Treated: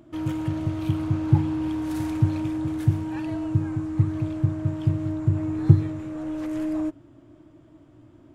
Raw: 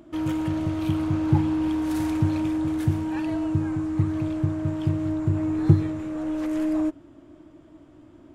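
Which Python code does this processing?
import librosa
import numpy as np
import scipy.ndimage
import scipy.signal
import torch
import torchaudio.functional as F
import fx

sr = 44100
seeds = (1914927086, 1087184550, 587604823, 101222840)

y = fx.peak_eq(x, sr, hz=120.0, db=10.0, octaves=0.51)
y = y * librosa.db_to_amplitude(-3.0)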